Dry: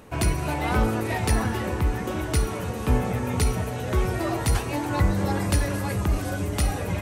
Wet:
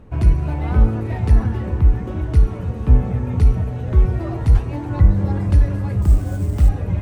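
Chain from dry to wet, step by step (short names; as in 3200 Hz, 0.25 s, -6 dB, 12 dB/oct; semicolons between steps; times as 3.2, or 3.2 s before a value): RIAA curve playback; 6.02–6.69 sample-rate reducer 8200 Hz, jitter 20%; gain -5 dB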